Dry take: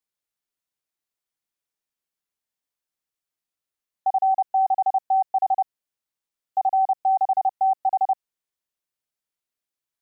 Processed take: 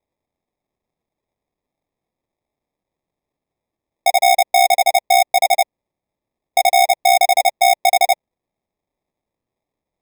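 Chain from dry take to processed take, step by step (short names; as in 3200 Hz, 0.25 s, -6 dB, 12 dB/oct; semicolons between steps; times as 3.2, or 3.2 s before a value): in parallel at -3.5 dB: wavefolder -23.5 dBFS; on the sum: resonant high-pass 600 Hz, resonance Q 3.9; sample-and-hold 30×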